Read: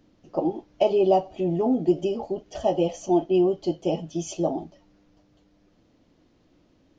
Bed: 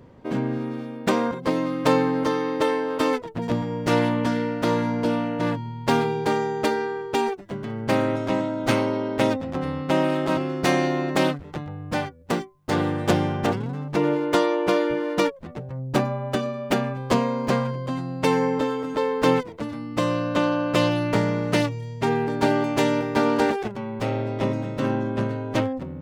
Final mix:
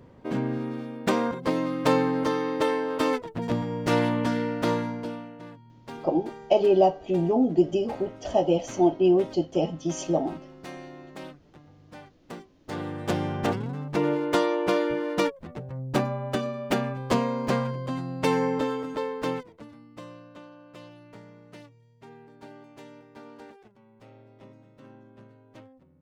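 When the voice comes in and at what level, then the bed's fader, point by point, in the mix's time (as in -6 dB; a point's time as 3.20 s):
5.70 s, +0.5 dB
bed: 4.69 s -2.5 dB
5.49 s -20 dB
11.96 s -20 dB
13.44 s -3 dB
18.75 s -3 dB
20.49 s -26 dB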